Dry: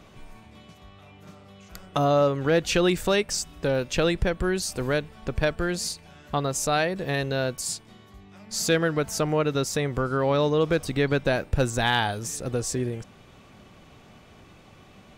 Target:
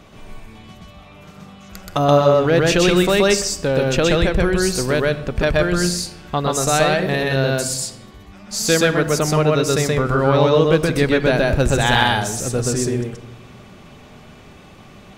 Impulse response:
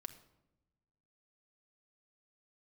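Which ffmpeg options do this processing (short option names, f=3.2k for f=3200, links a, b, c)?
-filter_complex "[0:a]asplit=2[a][b];[1:a]atrim=start_sample=2205,adelay=126[c];[b][c]afir=irnorm=-1:irlink=0,volume=4.5dB[d];[a][d]amix=inputs=2:normalize=0,volume=5dB"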